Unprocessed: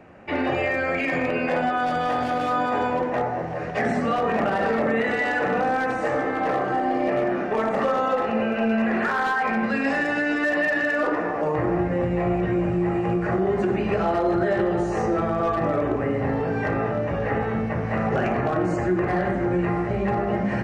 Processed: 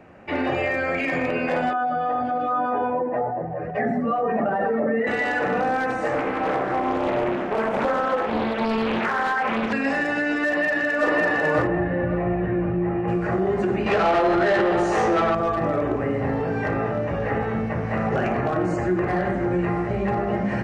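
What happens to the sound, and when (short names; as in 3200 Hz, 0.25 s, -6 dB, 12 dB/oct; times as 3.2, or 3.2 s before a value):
1.73–5.07 spectral contrast raised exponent 1.6
6.13–9.73 Doppler distortion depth 0.67 ms
10.45–11.07 echo throw 0.55 s, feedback 40%, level 0 dB
11.67–13.08 air absorption 410 m
13.86–15.35 overdrive pedal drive 16 dB, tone 6400 Hz, clips at -12 dBFS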